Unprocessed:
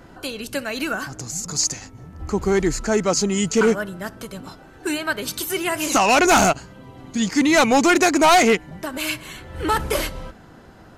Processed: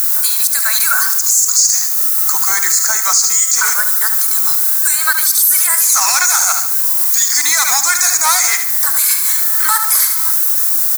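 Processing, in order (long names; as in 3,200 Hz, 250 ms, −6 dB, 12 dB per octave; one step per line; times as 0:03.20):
first difference
background noise violet −42 dBFS
upward compression, threshold −29 dBFS
leveller curve on the samples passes 2
high-pass filter 770 Hz 12 dB per octave
phaser with its sweep stopped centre 1,200 Hz, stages 4
on a send: repeating echo 73 ms, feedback 43%, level −10.5 dB
on the sum: boost into a limiter +18 dB
level −1 dB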